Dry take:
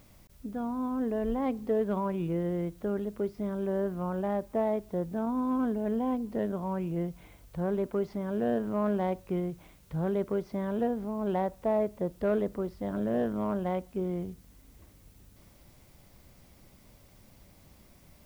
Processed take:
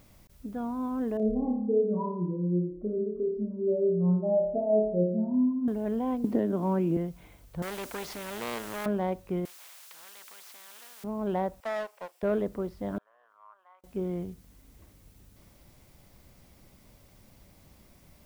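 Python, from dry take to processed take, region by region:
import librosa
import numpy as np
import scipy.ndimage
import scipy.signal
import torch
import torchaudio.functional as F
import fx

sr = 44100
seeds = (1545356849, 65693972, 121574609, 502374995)

y = fx.chain(x, sr, fx.spec_expand(power=2.8),
    fx.room_flutter(wall_m=4.8, rt60_s=0.73), at=(1.17, 5.68))
y = fx.chain(y, sr, fx.highpass(hz=91.0, slope=12),
    fx.peak_eq(hz=290.0, db=10.0, octaves=0.94),
    fx.band_squash(depth_pct=100), at=(6.24, 6.97))
y = fx.chain(y, sr, fx.self_delay(depth_ms=0.28),
    fx.bass_treble(bass_db=-11, treble_db=5),
    fx.spectral_comp(ratio=2.0), at=(7.62, 8.86))
y = fx.chain(y, sr, fx.highpass(hz=1000.0, slope=24),
    fx.spectral_comp(ratio=4.0), at=(9.45, 11.04))
y = fx.chain(y, sr, fx.lower_of_two(delay_ms=0.39),
    fx.highpass(hz=640.0, slope=24),
    fx.doppler_dist(depth_ms=0.17), at=(11.6, 12.23))
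y = fx.chain(y, sr, fx.high_shelf(hz=2700.0, db=-9.0),
    fx.level_steps(step_db=20),
    fx.ladder_highpass(hz=1000.0, resonance_pct=60), at=(12.98, 13.84))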